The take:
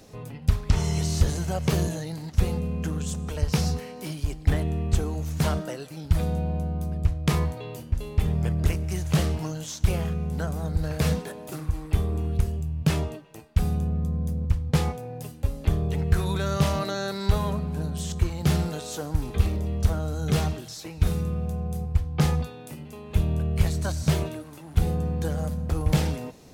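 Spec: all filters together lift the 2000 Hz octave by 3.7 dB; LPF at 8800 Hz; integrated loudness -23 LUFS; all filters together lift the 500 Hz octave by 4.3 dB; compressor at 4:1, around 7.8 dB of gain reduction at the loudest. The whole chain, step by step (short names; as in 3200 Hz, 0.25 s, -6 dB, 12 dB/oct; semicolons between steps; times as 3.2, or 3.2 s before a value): LPF 8800 Hz; bell 500 Hz +5 dB; bell 2000 Hz +4.5 dB; compressor 4:1, threshold -24 dBFS; gain +7.5 dB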